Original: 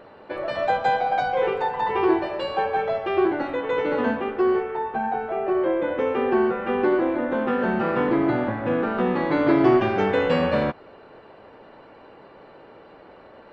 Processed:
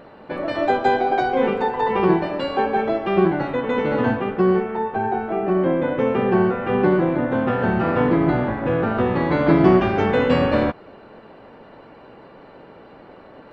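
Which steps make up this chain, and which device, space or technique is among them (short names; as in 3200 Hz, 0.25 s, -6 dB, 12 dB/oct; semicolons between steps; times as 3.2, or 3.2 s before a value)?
octave pedal (harmoniser -12 st -5 dB); gain +2 dB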